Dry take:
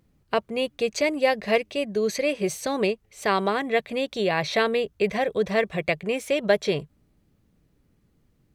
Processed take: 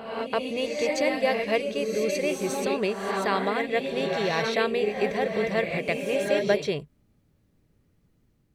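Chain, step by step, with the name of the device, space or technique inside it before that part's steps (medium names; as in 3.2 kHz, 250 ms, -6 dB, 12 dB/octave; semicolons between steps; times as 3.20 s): reverse reverb (reverse; reverberation RT60 1.1 s, pre-delay 119 ms, DRR 2 dB; reverse); trim -3.5 dB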